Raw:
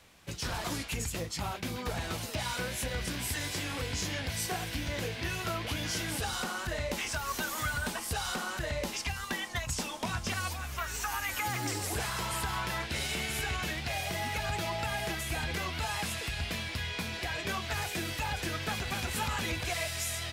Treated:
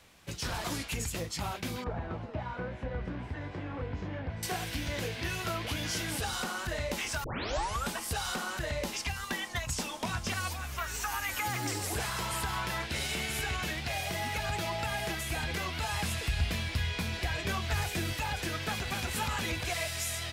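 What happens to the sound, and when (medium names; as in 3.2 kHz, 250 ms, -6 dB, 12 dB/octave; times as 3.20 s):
1.84–4.43 s: low-pass 1.2 kHz
7.24 s: tape start 0.66 s
15.92–18.13 s: bass shelf 100 Hz +11.5 dB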